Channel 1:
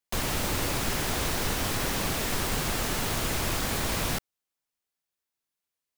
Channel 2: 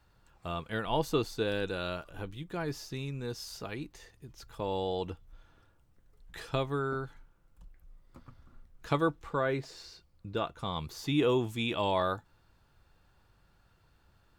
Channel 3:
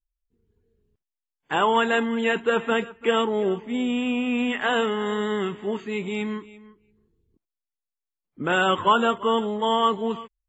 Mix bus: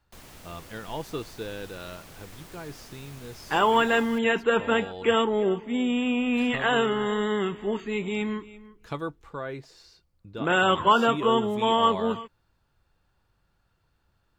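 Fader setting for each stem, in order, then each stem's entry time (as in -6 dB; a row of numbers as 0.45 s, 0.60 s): -19.0 dB, -4.5 dB, -0.5 dB; 0.00 s, 0.00 s, 2.00 s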